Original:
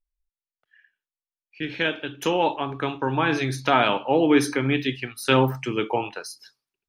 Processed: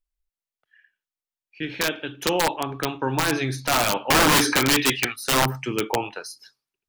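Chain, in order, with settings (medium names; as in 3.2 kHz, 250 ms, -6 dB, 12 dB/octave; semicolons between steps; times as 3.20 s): 4.10–5.16 s: overdrive pedal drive 18 dB, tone 4.3 kHz, clips at -7 dBFS; integer overflow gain 12.5 dB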